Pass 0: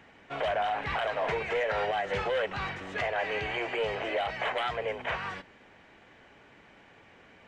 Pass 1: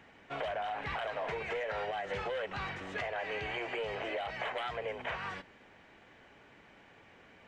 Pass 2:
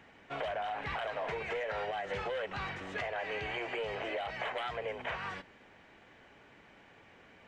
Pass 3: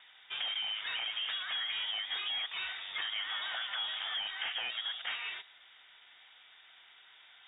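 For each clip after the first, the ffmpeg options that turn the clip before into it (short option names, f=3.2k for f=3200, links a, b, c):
-af "acompressor=threshold=-31dB:ratio=6,volume=-2.5dB"
-af anull
-af "lowpass=f=3.2k:t=q:w=0.5098,lowpass=f=3.2k:t=q:w=0.6013,lowpass=f=3.2k:t=q:w=0.9,lowpass=f=3.2k:t=q:w=2.563,afreqshift=-3800"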